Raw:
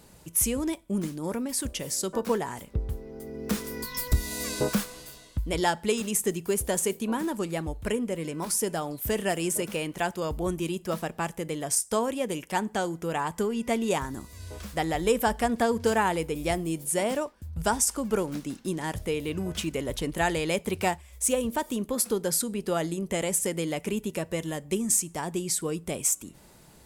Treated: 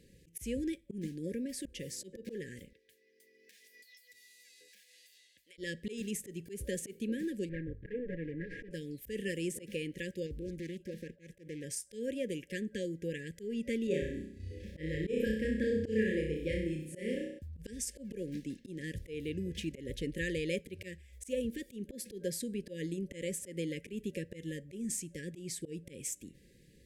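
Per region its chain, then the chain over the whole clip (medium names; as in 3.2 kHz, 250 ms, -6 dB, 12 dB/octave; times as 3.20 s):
2.73–5.58 s: high-pass 1.5 kHz + compression 12:1, threshold -45 dBFS
7.49–8.71 s: comb filter that takes the minimum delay 6.6 ms + resonant low-pass 1.5 kHz, resonance Q 3.4
10.26–11.64 s: expander -43 dBFS + compression 2.5:1, threshold -33 dBFS + loudspeaker Doppler distortion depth 0.36 ms
13.87–17.39 s: expander -40 dBFS + treble shelf 3.8 kHz -11.5 dB + flutter echo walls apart 5.5 m, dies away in 0.69 s
whole clip: FFT band-reject 560–1600 Hz; treble shelf 5.4 kHz -11.5 dB; slow attack 141 ms; trim -6 dB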